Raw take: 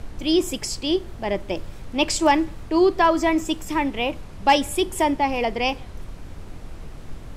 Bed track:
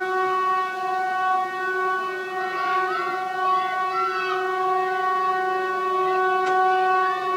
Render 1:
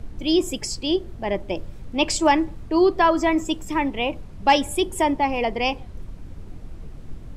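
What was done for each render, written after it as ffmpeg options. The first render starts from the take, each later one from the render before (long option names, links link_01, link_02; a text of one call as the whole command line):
ffmpeg -i in.wav -af "afftdn=noise_reduction=8:noise_floor=-39" out.wav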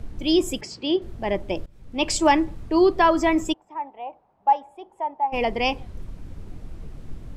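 ffmpeg -i in.wav -filter_complex "[0:a]asettb=1/sr,asplit=3[link_01][link_02][link_03];[link_01]atrim=end=0.614[link_04];[link_02]atrim=start=0.61:end=1.02,asetpts=PTS-STARTPTS,afade=type=in:duration=0.004:curve=qsin,afade=type=out:start_time=0.406:duration=0.004:curve=qsin,highpass=170,lowpass=3700[link_05];[link_03]atrim=start=1.016[link_06];[link_04][link_05]acrossfade=duration=0.004:curve1=hsin:curve2=qsin[link_07];[link_07][link_06]acrossfade=duration=0.004:curve1=qsin:curve2=hsin,asplit=3[link_08][link_09][link_10];[link_08]afade=type=out:start_time=3.52:duration=0.02[link_11];[link_09]bandpass=frequency=810:width_type=q:width=5.5,afade=type=in:start_time=3.52:duration=0.02,afade=type=out:start_time=5.32:duration=0.02[link_12];[link_10]afade=type=in:start_time=5.32:duration=0.02[link_13];[link_11][link_12][link_13]amix=inputs=3:normalize=0,asplit=2[link_14][link_15];[link_14]atrim=end=1.66,asetpts=PTS-STARTPTS,afade=type=out:start_time=1.656:duration=0.004:curve=hsin:silence=0.0841395[link_16];[link_15]atrim=start=1.66,asetpts=PTS-STARTPTS,afade=type=in:duration=0.5:silence=0.0841395[link_17];[link_16][link_17]concat=n=2:v=0:a=1" out.wav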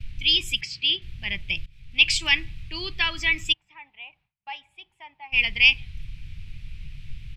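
ffmpeg -i in.wav -af "agate=range=-33dB:threshold=-48dB:ratio=3:detection=peak,firequalizer=gain_entry='entry(140,0);entry(240,-19);entry(520,-27);entry(2400,13);entry(6900,-4)':delay=0.05:min_phase=1" out.wav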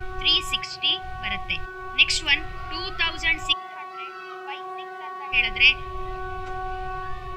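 ffmpeg -i in.wav -i bed.wav -filter_complex "[1:a]volume=-13dB[link_01];[0:a][link_01]amix=inputs=2:normalize=0" out.wav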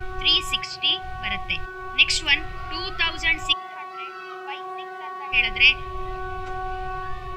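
ffmpeg -i in.wav -af "volume=1dB,alimiter=limit=-3dB:level=0:latency=1" out.wav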